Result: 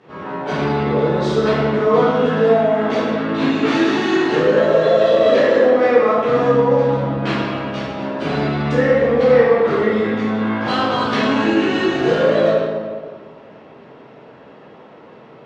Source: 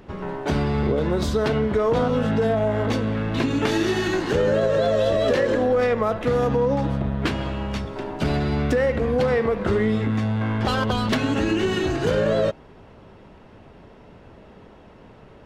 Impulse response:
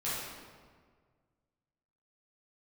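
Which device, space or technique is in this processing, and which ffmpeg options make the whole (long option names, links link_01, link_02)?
supermarket ceiling speaker: -filter_complex "[0:a]highpass=230,lowpass=5000[link_01];[1:a]atrim=start_sample=2205[link_02];[link_01][link_02]afir=irnorm=-1:irlink=0,volume=1dB"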